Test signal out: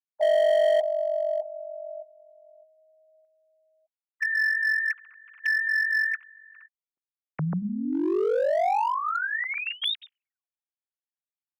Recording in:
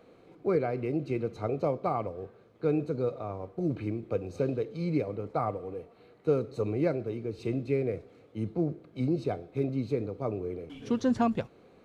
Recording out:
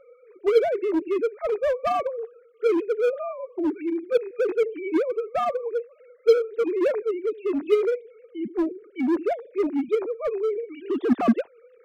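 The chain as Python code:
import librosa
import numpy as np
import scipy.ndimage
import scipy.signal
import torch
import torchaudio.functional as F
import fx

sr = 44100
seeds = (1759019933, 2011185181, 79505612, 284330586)

p1 = fx.sine_speech(x, sr)
p2 = 10.0 ** (-30.5 / 20.0) * (np.abs((p1 / 10.0 ** (-30.5 / 20.0) + 3.0) % 4.0 - 2.0) - 1.0)
p3 = p1 + (p2 * 10.0 ** (-5.5 / 20.0))
y = p3 * 10.0 ** (5.5 / 20.0)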